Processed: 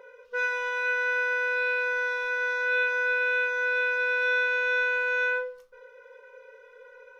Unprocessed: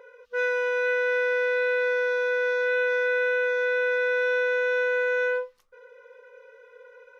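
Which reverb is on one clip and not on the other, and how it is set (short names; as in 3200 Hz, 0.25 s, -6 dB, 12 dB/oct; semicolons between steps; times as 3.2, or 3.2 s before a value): shoebox room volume 560 m³, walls furnished, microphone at 1.1 m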